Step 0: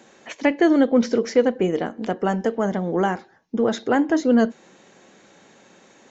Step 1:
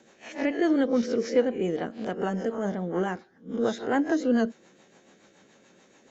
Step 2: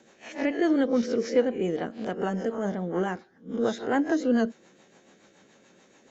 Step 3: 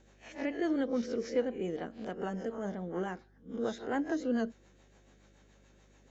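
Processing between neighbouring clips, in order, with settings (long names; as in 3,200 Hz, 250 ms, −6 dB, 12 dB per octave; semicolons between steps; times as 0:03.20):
peak hold with a rise ahead of every peak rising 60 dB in 0.32 s; rotating-speaker cabinet horn 7 Hz; level −5 dB
no processing that can be heard
mains hum 50 Hz, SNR 28 dB; level −8 dB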